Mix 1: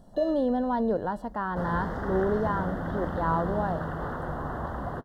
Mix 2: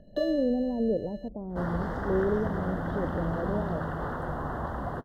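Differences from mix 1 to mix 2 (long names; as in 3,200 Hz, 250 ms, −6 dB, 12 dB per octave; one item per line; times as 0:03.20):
speech: add Butterworth low-pass 600 Hz 36 dB per octave
first sound +6.5 dB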